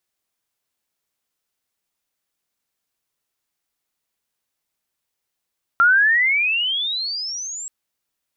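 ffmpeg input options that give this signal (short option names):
-f lavfi -i "aevalsrc='pow(10,(-10-18.5*t/1.88)/20)*sin(2*PI*1360*1.88/(30*log(2)/12)*(exp(30*log(2)/12*t/1.88)-1))':d=1.88:s=44100"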